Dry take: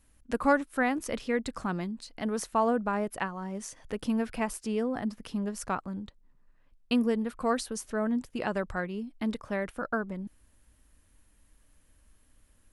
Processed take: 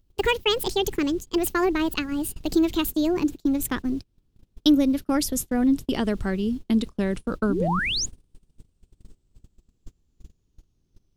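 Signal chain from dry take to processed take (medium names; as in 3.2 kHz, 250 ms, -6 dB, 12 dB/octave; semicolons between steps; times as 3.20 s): gliding tape speed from 173% -> 55%; added noise brown -48 dBFS; high-order bell 1.1 kHz -11 dB 2.4 oct; in parallel at +2 dB: compression 10:1, threshold -43 dBFS, peak gain reduction 20 dB; on the sum: painted sound rise, 7.49–8.06 s, 230–7300 Hz -34 dBFS; gate -36 dBFS, range -32 dB; trim +8 dB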